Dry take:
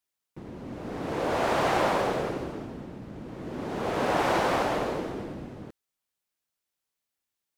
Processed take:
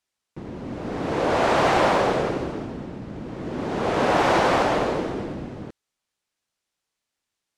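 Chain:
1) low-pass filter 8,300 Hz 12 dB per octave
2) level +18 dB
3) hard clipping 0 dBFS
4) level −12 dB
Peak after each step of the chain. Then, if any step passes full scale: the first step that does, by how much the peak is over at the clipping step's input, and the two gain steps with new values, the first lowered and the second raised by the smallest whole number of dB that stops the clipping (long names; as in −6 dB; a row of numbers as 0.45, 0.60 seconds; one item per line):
−13.0, +5.0, 0.0, −12.0 dBFS
step 2, 5.0 dB
step 2 +13 dB, step 4 −7 dB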